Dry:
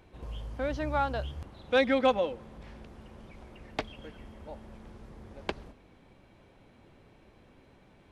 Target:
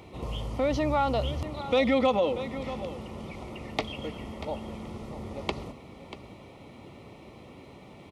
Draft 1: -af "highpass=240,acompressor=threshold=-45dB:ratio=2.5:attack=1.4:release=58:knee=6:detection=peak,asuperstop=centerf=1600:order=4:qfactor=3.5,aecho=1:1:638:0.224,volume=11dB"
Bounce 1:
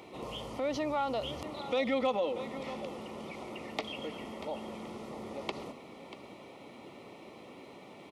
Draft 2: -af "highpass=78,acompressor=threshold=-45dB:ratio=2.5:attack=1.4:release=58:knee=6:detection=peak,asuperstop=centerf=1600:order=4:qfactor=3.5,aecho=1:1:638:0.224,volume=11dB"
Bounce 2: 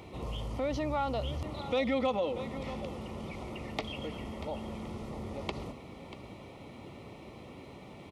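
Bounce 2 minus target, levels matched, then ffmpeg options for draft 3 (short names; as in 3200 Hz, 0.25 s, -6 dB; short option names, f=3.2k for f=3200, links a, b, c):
compressor: peak gain reduction +6.5 dB
-af "highpass=78,acompressor=threshold=-34.5dB:ratio=2.5:attack=1.4:release=58:knee=6:detection=peak,asuperstop=centerf=1600:order=4:qfactor=3.5,aecho=1:1:638:0.224,volume=11dB"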